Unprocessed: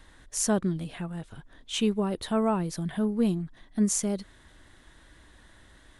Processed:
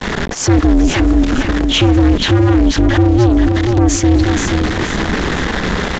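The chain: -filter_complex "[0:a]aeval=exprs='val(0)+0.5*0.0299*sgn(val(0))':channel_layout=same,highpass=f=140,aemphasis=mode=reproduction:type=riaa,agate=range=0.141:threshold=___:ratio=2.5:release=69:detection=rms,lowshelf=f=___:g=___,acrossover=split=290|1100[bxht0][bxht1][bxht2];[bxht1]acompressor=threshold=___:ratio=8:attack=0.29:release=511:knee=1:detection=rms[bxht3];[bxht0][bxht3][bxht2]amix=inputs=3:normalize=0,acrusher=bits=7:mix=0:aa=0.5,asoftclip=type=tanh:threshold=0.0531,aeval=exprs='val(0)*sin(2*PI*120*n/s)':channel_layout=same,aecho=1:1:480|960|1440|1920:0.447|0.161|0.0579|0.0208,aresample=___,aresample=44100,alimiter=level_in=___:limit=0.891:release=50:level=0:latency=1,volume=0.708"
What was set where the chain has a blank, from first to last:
0.0178, 280, -4.5, 0.0141, 16000, 22.4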